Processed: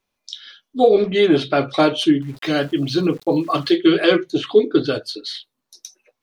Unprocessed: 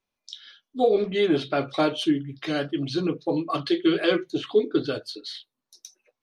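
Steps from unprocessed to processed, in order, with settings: 2.22–3.76 s: small samples zeroed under -47.5 dBFS; trim +7 dB

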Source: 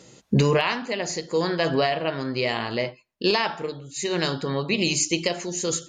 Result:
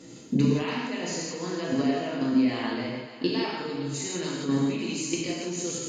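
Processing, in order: compression 2.5:1, threshold -34 dBFS, peak gain reduction 12.5 dB; peaking EQ 270 Hz +15 dB 0.36 oct; level held to a coarse grid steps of 13 dB; on a send: thinning echo 282 ms, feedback 58%, high-pass 370 Hz, level -11 dB; on the sum: gated-style reverb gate 200 ms flat, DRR -4 dB; trim +2 dB

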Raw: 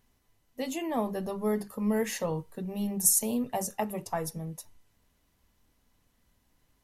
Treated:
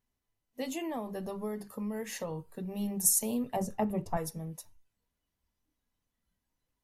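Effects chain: spectral noise reduction 12 dB; 0.89–2.61 s: compression, threshold -31 dBFS, peak gain reduction 8 dB; 3.56–4.17 s: tilt EQ -3 dB/octave; trim -2.5 dB

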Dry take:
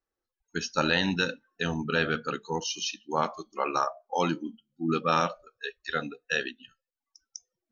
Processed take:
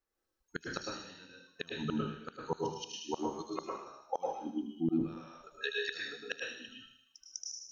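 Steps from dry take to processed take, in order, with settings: inverted gate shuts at -20 dBFS, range -30 dB; on a send: feedback echo behind a high-pass 77 ms, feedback 59%, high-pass 4 kHz, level -3 dB; on the sum: plate-style reverb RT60 0.63 s, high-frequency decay 0.8×, pre-delay 95 ms, DRR -1.5 dB; trim -1 dB

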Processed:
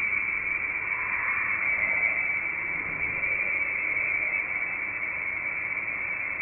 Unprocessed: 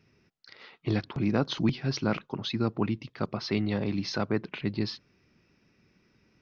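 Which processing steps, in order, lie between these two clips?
frequency inversion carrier 2.5 kHz; echo with a slow build-up 118 ms, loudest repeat 8, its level -11.5 dB; Paulstretch 4.6×, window 0.25 s, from 3.92 s

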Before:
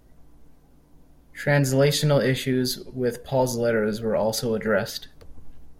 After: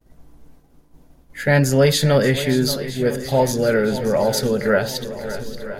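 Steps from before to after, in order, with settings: expander -49 dBFS; shuffle delay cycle 965 ms, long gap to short 1.5:1, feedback 51%, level -13 dB; trim +4.5 dB

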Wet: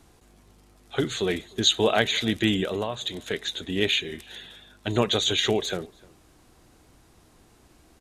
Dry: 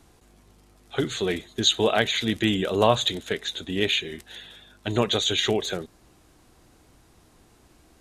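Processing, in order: 2.63–3.33 s: compression 12:1, threshold -25 dBFS, peak gain reduction 13 dB; echo from a far wall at 52 m, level -25 dB

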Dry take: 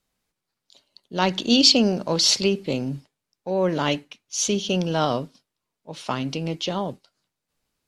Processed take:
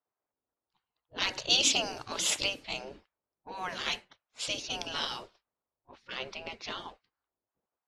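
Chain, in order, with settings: level-controlled noise filter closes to 770 Hz, open at -18 dBFS; spectral gate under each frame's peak -15 dB weak

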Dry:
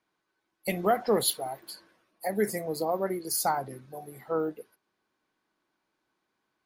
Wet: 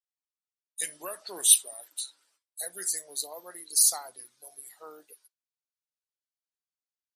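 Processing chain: gliding tape speed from 82% -> 104%; low-pass 8.3 kHz 12 dB/octave; gate with hold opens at -56 dBFS; tilt EQ +4 dB/octave; harmonic-percussive split harmonic -4 dB; tone controls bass -9 dB, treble +14 dB; trim -10.5 dB

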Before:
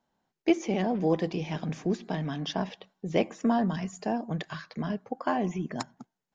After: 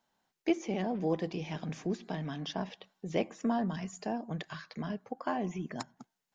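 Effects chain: tape noise reduction on one side only encoder only; trim -5.5 dB

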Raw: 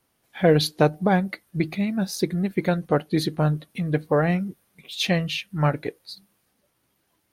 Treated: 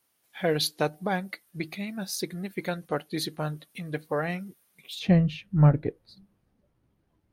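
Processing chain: tilt EQ +2 dB/octave, from 4.98 s -4 dB/octave; trim -6 dB

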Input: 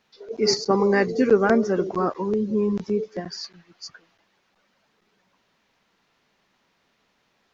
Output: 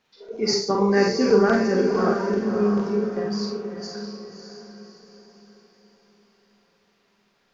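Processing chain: on a send: echo that smears into a reverb 601 ms, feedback 42%, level -6 dB; on the sum: Schroeder reverb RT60 0.33 s, combs from 32 ms, DRR 1 dB; trim -3 dB

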